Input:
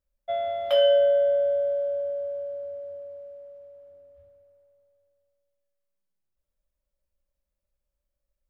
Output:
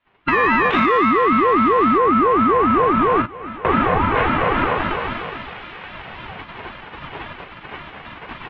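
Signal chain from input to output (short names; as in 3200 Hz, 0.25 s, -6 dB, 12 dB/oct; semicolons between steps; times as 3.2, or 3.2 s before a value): spectral limiter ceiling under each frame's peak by 28 dB; recorder AGC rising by 24 dB/s; 3.21–3.65 flipped gate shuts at -20 dBFS, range -26 dB; on a send: early reflections 38 ms -6.5 dB, 52 ms -17 dB; 0.94–1.98 on the sum: companded quantiser 4-bit; comb 2.8 ms, depth 79%; mistuned SSB +86 Hz 260–2700 Hz; in parallel at -8.5 dB: soft clip -17 dBFS, distortion -16 dB; on the sum: compressor 8:1, threshold -29 dBFS, peak gain reduction 15.5 dB; maximiser +21.5 dB; ring modulator with a swept carrier 410 Hz, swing 35%, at 3.7 Hz; gain -3.5 dB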